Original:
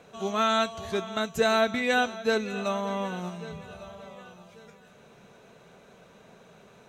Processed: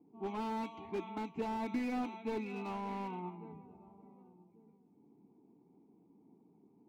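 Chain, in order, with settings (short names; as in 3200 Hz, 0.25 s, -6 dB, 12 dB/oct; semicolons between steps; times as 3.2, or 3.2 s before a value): low-pass opened by the level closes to 330 Hz, open at -23.5 dBFS; vowel filter u; slew limiter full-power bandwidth 4.9 Hz; gain +7 dB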